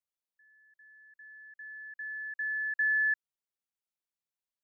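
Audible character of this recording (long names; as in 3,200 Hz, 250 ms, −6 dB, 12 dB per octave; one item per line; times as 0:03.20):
background noise floor −94 dBFS
spectral slope +0.5 dB per octave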